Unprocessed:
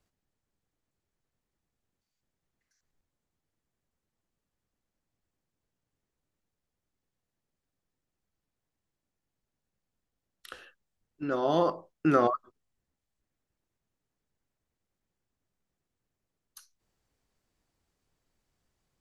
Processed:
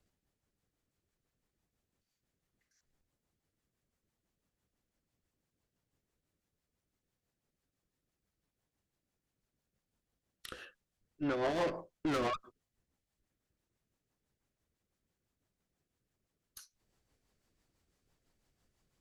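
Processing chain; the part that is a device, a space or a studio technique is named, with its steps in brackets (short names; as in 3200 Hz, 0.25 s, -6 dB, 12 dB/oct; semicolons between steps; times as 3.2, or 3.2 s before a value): overdriven rotary cabinet (tube stage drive 33 dB, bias 0.4; rotary speaker horn 6 Hz); gain +4.5 dB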